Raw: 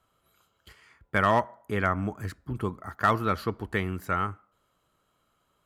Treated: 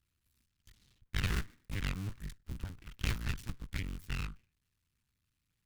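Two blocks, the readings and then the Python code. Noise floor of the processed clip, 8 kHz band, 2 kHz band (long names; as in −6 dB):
−83 dBFS, +1.5 dB, −12.0 dB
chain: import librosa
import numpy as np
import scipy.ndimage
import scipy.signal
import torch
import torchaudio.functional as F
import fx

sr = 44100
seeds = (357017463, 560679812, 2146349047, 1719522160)

y = fx.cycle_switch(x, sr, every=2, mode='muted')
y = np.abs(y)
y = fx.tone_stack(y, sr, knobs='6-0-2')
y = F.gain(torch.from_numpy(y), 10.5).numpy()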